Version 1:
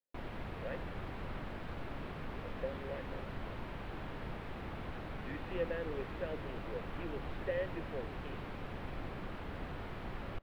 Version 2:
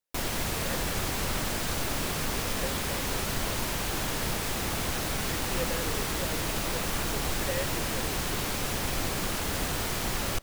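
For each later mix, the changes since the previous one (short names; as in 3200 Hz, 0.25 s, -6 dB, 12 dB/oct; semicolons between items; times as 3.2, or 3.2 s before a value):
background +10.0 dB; master: remove air absorption 500 m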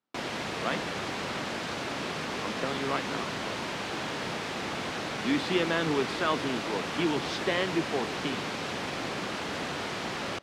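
speech: remove vowel filter e; master: add BPF 180–4100 Hz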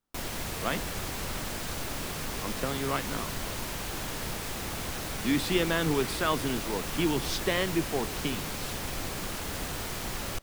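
background -4.5 dB; master: remove BPF 180–4100 Hz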